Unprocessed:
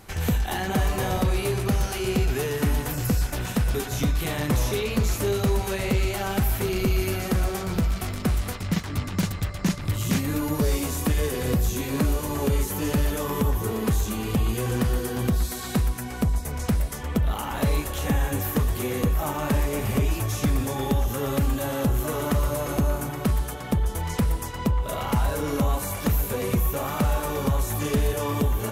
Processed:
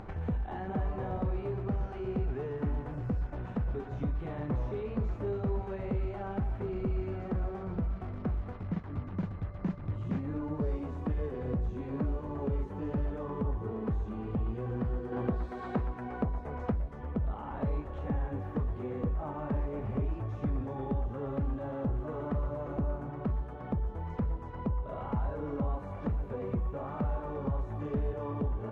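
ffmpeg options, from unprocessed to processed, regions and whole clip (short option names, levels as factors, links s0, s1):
-filter_complex "[0:a]asettb=1/sr,asplit=3[s0][s1][s2];[s0]atrim=end=15.124[s3];[s1]atrim=start=15.12:end=16.72,asetpts=PTS-STARTPTS,afade=t=in:d=0.004:c=qsin,afade=t=out:st=1.596:d=0.004:c=qsin,bass=f=250:g=-9,treble=f=4000:g=-4,acontrast=90[s4];[s2]atrim=start=16.716[s5];[s3][s4]acrossfade=d=0.004:c1=hsin:c2=qsin[s6];[s6][s5]acrossfade=d=0.004:c1=qsin:c2=hsin,lowpass=1100,acompressor=mode=upward:threshold=0.0562:ratio=2.5,volume=0.355"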